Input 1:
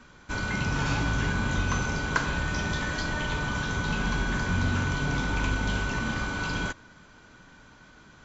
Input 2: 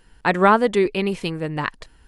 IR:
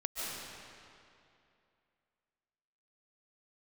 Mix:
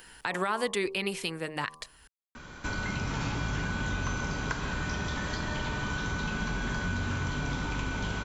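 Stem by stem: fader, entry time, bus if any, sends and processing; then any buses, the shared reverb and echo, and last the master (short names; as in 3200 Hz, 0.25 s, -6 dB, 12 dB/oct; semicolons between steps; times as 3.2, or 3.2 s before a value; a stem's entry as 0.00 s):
-3.0 dB, 2.35 s, send -6 dB, compressor 2:1, threshold -33 dBFS, peak gain reduction 8 dB
-4.0 dB, 0.00 s, no send, tilt +3.5 dB/oct; de-hum 77.49 Hz, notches 15; limiter -12.5 dBFS, peak gain reduction 12 dB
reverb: on, RT60 2.6 s, pre-delay 0.105 s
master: three-band squash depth 40%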